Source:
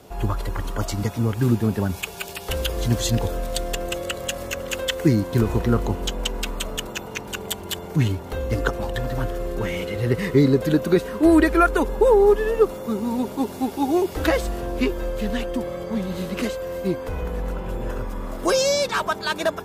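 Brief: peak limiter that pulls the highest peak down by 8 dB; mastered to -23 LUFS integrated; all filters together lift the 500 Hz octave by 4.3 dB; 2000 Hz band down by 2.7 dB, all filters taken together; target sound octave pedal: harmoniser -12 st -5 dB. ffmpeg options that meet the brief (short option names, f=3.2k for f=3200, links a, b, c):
-filter_complex "[0:a]equalizer=f=500:t=o:g=5.5,equalizer=f=2k:t=o:g=-4,alimiter=limit=-9.5dB:level=0:latency=1,asplit=2[a][b];[b]asetrate=22050,aresample=44100,atempo=2,volume=-5dB[c];[a][c]amix=inputs=2:normalize=0,volume=-1.5dB"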